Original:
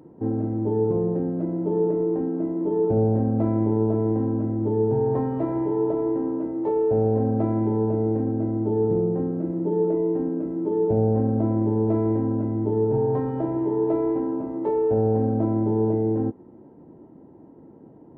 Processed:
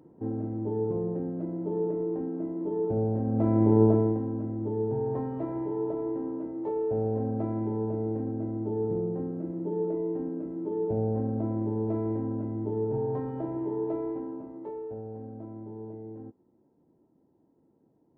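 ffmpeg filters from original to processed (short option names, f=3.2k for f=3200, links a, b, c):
-af "volume=2.5dB,afade=t=in:st=3.23:d=0.61:silence=0.334965,afade=t=out:st=3.84:d=0.36:silence=0.316228,afade=t=out:st=13.73:d=1.31:silence=0.266073"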